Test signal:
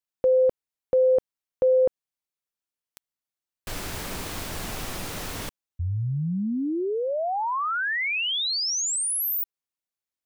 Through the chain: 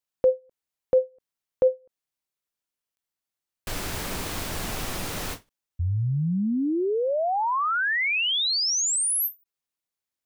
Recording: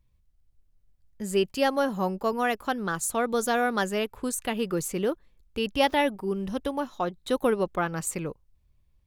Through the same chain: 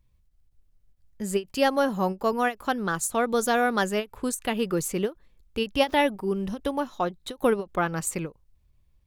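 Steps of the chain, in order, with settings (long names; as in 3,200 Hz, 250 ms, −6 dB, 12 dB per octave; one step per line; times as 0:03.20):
every ending faded ahead of time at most 330 dB per second
level +2 dB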